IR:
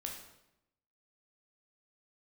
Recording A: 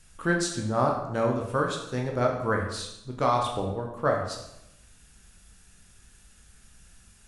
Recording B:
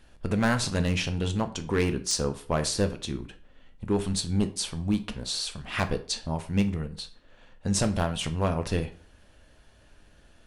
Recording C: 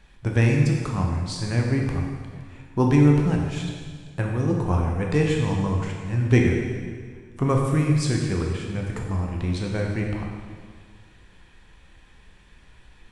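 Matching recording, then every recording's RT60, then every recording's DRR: A; 0.85, 0.45, 1.8 seconds; 0.0, 8.0, −0.5 decibels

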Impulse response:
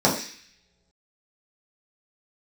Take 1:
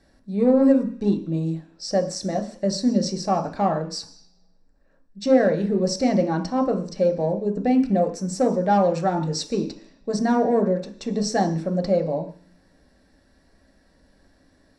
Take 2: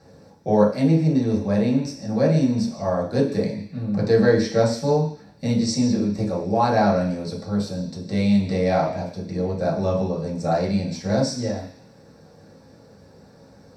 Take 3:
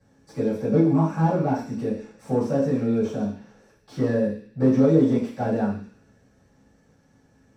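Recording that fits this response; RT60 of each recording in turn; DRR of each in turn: 2; non-exponential decay, non-exponential decay, non-exponential decay; 4.0, −6.0, −14.0 decibels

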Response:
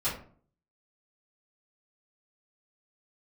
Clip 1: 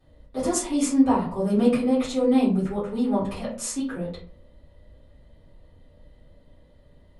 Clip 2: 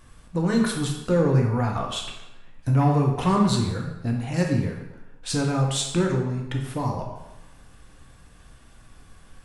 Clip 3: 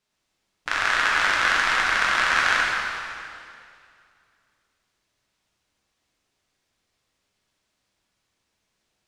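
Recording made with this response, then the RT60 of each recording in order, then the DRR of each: 1; 0.50, 0.95, 2.4 seconds; −12.5, 0.0, −5.5 decibels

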